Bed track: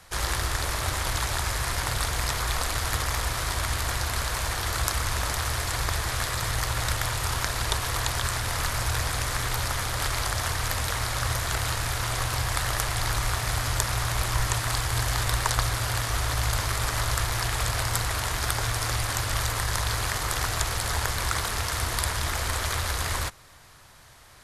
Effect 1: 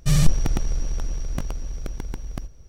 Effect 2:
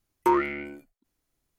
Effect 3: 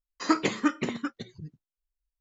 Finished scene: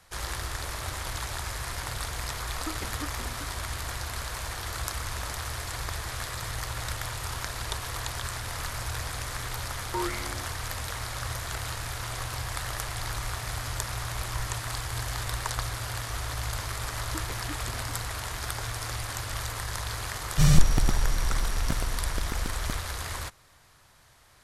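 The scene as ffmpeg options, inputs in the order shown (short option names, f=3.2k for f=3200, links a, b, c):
-filter_complex "[3:a]asplit=2[a][b];[0:a]volume=-6.5dB[c];[2:a]dynaudnorm=f=190:g=3:m=11.5dB[d];[a]atrim=end=2.2,asetpts=PTS-STARTPTS,volume=-14.5dB,afade=t=in:d=0.004:c=hsin,afade=t=out:st=2.196:d=0.004:c=hsin,adelay=2370[e];[d]atrim=end=1.58,asetpts=PTS-STARTPTS,volume=-16dB,afade=t=in:d=0.004:c=hsin,afade=t=out:st=1.576:d=0.004:c=hsin,adelay=9680[f];[b]atrim=end=2.2,asetpts=PTS-STARTPTS,volume=-17dB,afade=t=in:d=0.004:c=hsin,afade=t=out:st=2.196:d=0.004:c=hsin,adelay=16850[g];[1:a]atrim=end=2.68,asetpts=PTS-STARTPTS,volume=-1dB,afade=t=in:d=0.004:c=hsin,afade=t=out:st=2.676:d=0.004:c=hsin,adelay=20320[h];[c][e][f][g][h]amix=inputs=5:normalize=0"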